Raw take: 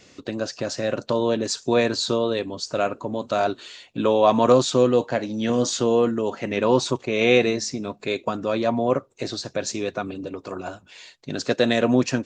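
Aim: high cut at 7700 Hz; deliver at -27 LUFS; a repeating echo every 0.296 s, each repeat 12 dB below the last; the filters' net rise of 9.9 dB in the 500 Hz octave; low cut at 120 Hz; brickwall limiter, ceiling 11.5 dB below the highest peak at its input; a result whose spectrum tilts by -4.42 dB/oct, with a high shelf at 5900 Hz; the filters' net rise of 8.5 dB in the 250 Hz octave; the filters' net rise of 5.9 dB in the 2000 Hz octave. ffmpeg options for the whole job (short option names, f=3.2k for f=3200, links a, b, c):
-af "highpass=120,lowpass=7.7k,equalizer=f=250:t=o:g=7.5,equalizer=f=500:t=o:g=9,equalizer=f=2k:t=o:g=8,highshelf=f=5.9k:g=-7.5,alimiter=limit=-6.5dB:level=0:latency=1,aecho=1:1:296|592|888:0.251|0.0628|0.0157,volume=-9dB"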